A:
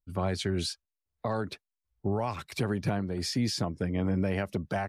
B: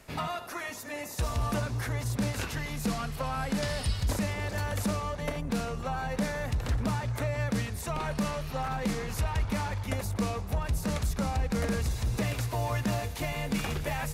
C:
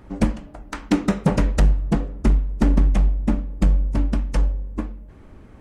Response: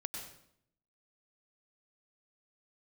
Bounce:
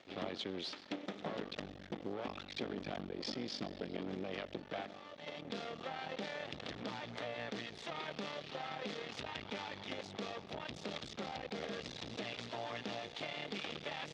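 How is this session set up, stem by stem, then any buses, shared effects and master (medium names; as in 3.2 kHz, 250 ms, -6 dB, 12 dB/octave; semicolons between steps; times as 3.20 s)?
-2.0 dB, 0.00 s, send -15 dB, none
-0.5 dB, 0.00 s, no send, auto duck -16 dB, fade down 0.35 s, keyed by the first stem
-13.0 dB, 0.00 s, send -7.5 dB, none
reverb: on, RT60 0.70 s, pre-delay 90 ms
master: half-wave rectifier; cabinet simulation 280–5100 Hz, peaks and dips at 1 kHz -6 dB, 1.5 kHz -4 dB, 3.4 kHz +8 dB; compression 2:1, threshold -41 dBFS, peak gain reduction 7 dB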